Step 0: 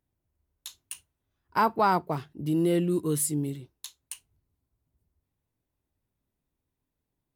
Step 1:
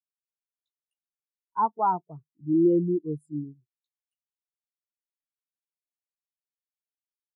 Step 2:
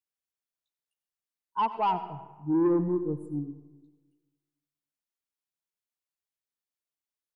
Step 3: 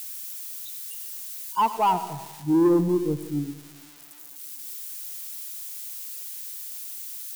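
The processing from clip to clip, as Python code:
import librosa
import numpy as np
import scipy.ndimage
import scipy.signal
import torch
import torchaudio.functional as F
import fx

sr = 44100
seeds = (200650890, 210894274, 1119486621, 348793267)

y1 = scipy.signal.sosfilt(scipy.signal.bessel(2, 6400.0, 'lowpass', norm='mag', fs=sr, output='sos'), x)
y1 = fx.spectral_expand(y1, sr, expansion=2.5)
y2 = 10.0 ** (-19.5 / 20.0) * np.tanh(y1 / 10.0 ** (-19.5 / 20.0))
y2 = y2 + 10.0 ** (-16.5 / 20.0) * np.pad(y2, (int(89 * sr / 1000.0), 0))[:len(y2)]
y2 = fx.rev_freeverb(y2, sr, rt60_s=1.3, hf_ratio=0.55, predelay_ms=60, drr_db=13.0)
y3 = y2 + 0.5 * 10.0 ** (-35.0 / 20.0) * np.diff(np.sign(y2), prepend=np.sign(y2[:1]))
y3 = F.gain(torch.from_numpy(y3), 5.0).numpy()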